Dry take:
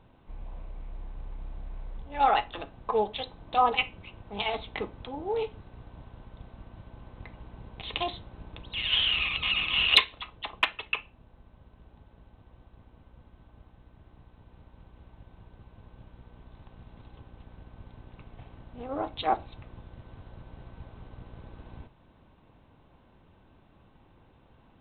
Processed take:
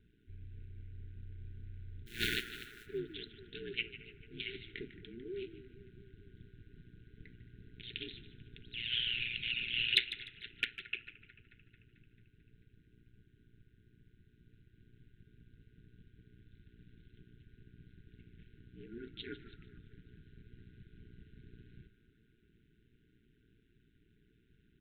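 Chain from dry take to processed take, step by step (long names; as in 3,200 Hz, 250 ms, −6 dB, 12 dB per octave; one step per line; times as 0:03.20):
0:02.06–0:02.85: compressing power law on the bin magnitudes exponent 0.31
delay with a band-pass on its return 221 ms, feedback 67%, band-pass 850 Hz, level −13 dB
ring modulation 59 Hz
brick-wall band-stop 460–1,400 Hz
echo with shifted repeats 150 ms, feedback 32%, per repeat −69 Hz, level −14.5 dB
level −6.5 dB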